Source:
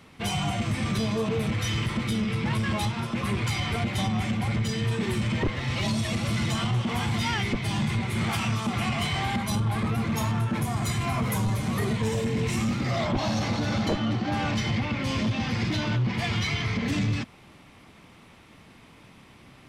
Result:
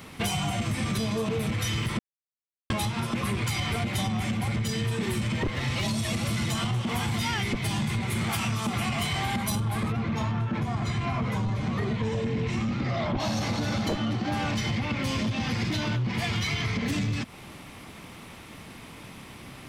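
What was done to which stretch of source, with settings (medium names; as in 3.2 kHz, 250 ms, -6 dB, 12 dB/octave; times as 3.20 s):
1.99–2.70 s: mute
9.92–13.20 s: distance through air 160 m
whole clip: treble shelf 10 kHz +11.5 dB; compression, threshold -33 dBFS; trim +7 dB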